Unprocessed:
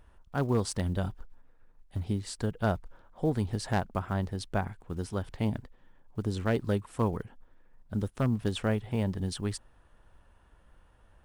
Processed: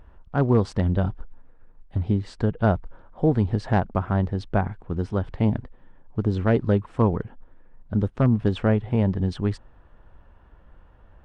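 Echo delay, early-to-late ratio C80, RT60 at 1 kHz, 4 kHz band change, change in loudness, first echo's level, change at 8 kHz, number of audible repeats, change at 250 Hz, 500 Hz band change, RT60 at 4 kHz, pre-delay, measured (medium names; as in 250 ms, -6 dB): no echo, no reverb, no reverb, -1.5 dB, +8.0 dB, no echo, under -10 dB, no echo, +8.5 dB, +7.5 dB, no reverb, no reverb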